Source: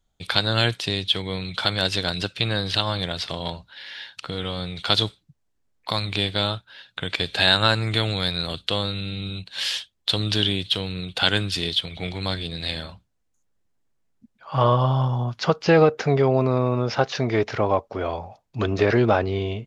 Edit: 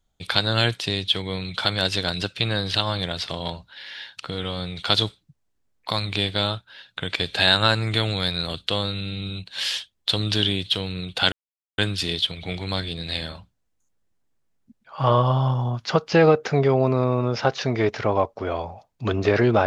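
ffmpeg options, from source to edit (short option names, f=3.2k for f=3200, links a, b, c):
-filter_complex "[0:a]asplit=2[a][b];[a]atrim=end=11.32,asetpts=PTS-STARTPTS,afade=t=out:st=11.316:d=0.004:c=hsin,apad=pad_dur=0.46[c];[b]atrim=start=11.32,asetpts=PTS-STARTPTS,afade=t=in:d=0.004:c=hsin[d];[c][d]concat=n=2:v=0:a=1"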